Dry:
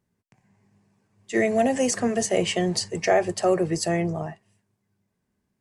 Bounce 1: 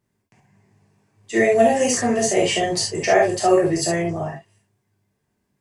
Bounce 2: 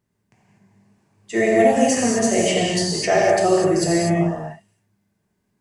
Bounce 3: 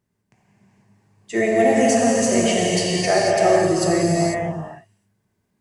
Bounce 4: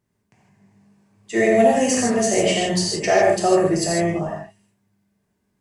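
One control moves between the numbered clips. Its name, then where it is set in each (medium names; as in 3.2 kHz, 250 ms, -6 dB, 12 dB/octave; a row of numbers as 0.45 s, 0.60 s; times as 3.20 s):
gated-style reverb, gate: 90 ms, 270 ms, 520 ms, 180 ms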